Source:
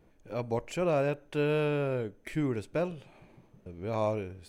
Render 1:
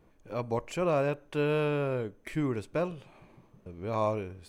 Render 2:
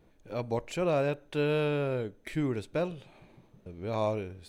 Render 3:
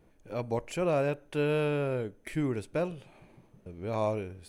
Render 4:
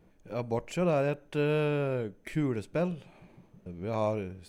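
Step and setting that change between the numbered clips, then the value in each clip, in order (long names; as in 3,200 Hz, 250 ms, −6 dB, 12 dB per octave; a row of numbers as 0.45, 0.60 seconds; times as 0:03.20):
parametric band, centre frequency: 1,100, 3,800, 10,000, 180 Hertz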